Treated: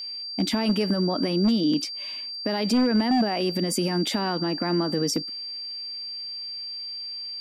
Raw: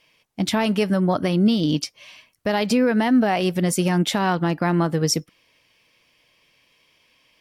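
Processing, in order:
brickwall limiter −18.5 dBFS, peak gain reduction 8.5 dB
high-pass filter sweep 250 Hz → 100 Hz, 0:05.84–0:06.50
wave folding −15.5 dBFS
steady tone 4,700 Hz −32 dBFS

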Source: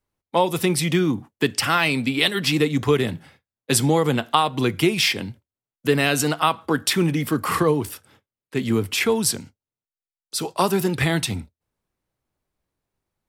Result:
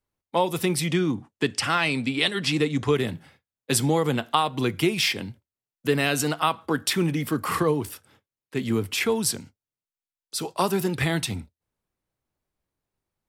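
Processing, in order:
0:00.87–0:02.96: low-pass filter 10,000 Hz 24 dB per octave
level −3.5 dB

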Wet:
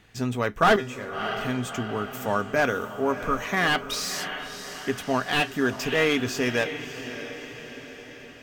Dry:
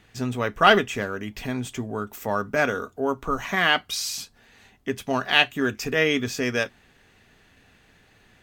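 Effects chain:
0:00.76–0:01.41: tuned comb filter 130 Hz, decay 0.28 s, harmonics all, mix 80%
feedback delay with all-pass diffusion 630 ms, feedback 55%, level −12 dB
slew-rate limiting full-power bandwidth 220 Hz

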